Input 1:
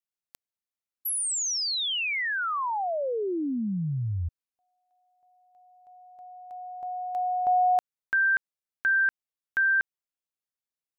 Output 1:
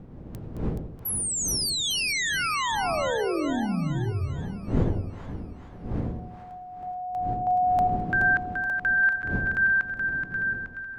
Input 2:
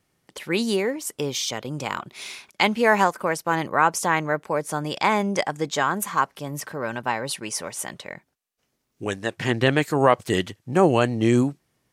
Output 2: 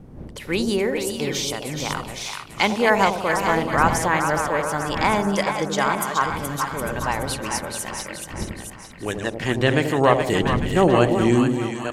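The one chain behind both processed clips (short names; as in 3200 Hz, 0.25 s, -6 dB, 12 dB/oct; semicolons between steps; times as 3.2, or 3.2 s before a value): reverse delay 0.458 s, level -8 dB; wind noise 220 Hz -36 dBFS; split-band echo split 820 Hz, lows 85 ms, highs 0.425 s, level -6 dB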